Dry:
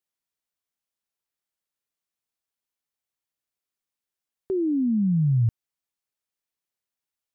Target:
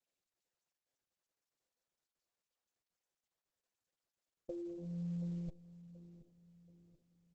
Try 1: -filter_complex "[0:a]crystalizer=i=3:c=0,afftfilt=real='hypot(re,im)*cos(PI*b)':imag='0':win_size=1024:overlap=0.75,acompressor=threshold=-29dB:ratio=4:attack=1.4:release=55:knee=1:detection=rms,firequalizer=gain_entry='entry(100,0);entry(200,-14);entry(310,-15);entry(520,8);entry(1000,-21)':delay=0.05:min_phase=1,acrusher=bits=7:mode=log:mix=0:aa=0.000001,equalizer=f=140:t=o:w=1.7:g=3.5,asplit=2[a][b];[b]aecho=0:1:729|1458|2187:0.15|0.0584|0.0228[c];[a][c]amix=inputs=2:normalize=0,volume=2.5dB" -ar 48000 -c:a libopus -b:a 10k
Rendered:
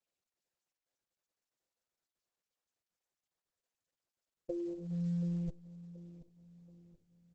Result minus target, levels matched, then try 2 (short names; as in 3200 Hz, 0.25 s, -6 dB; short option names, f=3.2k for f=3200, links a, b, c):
compressor: peak gain reduction -5.5 dB
-filter_complex "[0:a]crystalizer=i=3:c=0,afftfilt=real='hypot(re,im)*cos(PI*b)':imag='0':win_size=1024:overlap=0.75,acompressor=threshold=-36.5dB:ratio=4:attack=1.4:release=55:knee=1:detection=rms,firequalizer=gain_entry='entry(100,0);entry(200,-14);entry(310,-15);entry(520,8);entry(1000,-21)':delay=0.05:min_phase=1,acrusher=bits=7:mode=log:mix=0:aa=0.000001,equalizer=f=140:t=o:w=1.7:g=3.5,asplit=2[a][b];[b]aecho=0:1:729|1458|2187:0.15|0.0584|0.0228[c];[a][c]amix=inputs=2:normalize=0,volume=2.5dB" -ar 48000 -c:a libopus -b:a 10k